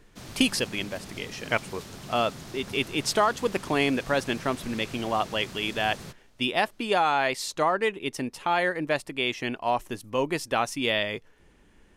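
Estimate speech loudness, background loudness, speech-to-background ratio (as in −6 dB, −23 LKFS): −27.5 LKFS, −42.0 LKFS, 14.5 dB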